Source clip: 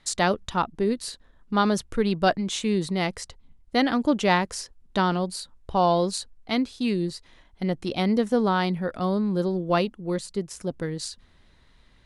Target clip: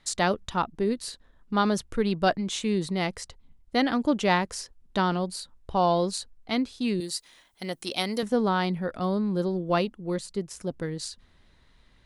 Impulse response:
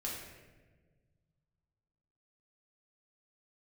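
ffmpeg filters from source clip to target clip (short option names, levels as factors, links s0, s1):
-filter_complex "[0:a]asettb=1/sr,asplit=3[s0][s1][s2];[s0]atrim=end=7.004[s3];[s1]atrim=start=7:end=8.23,asetpts=PTS-STARTPTS,afade=t=in:d=0.004:c=qsin,afade=t=out:st=1.226:d=0.004:c=qsin,aemphasis=mode=production:type=riaa[s4];[s2]atrim=start=8.226[s5];[s3][s4]acrossfade=d=0.004:c1=hsin:c2=qsin[s6];[s6][s5]acrossfade=d=0.004:c1=qsin:c2=hsin,volume=0.794"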